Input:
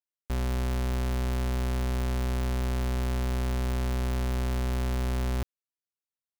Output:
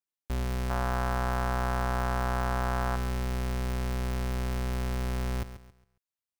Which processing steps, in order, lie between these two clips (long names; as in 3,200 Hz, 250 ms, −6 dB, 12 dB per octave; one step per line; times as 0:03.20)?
0:00.70–0:02.96: flat-topped bell 1,000 Hz +11 dB
feedback echo at a low word length 137 ms, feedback 35%, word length 10 bits, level −12 dB
level −1.5 dB